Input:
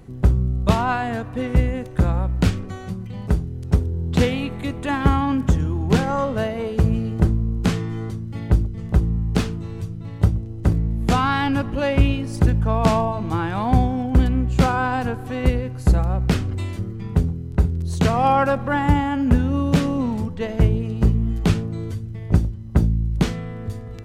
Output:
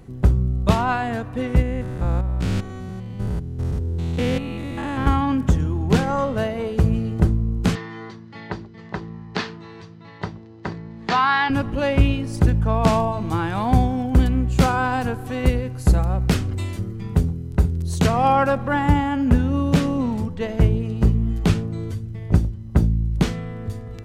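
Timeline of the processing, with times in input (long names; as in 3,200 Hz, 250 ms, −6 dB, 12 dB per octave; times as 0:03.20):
0:01.62–0:05.07: spectrum averaged block by block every 200 ms
0:07.75–0:11.50: loudspeaker in its box 270–5,500 Hz, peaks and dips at 280 Hz −8 dB, 530 Hz −6 dB, 970 Hz +6 dB, 1,800 Hz +8 dB, 4,300 Hz +5 dB
0:12.93–0:18.07: high-shelf EQ 5,800 Hz +6 dB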